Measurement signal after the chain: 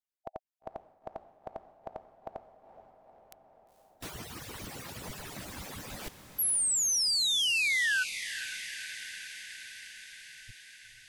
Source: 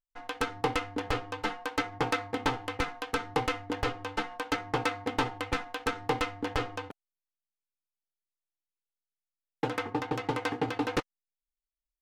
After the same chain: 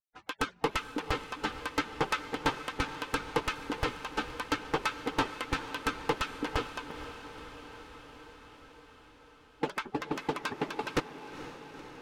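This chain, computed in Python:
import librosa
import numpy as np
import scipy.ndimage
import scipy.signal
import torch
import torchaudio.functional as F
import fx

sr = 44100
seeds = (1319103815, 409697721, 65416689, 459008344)

y = fx.hpss_only(x, sr, part='percussive')
y = fx.vibrato(y, sr, rate_hz=4.5, depth_cents=27.0)
y = fx.echo_diffused(y, sr, ms=473, feedback_pct=71, wet_db=-12.0)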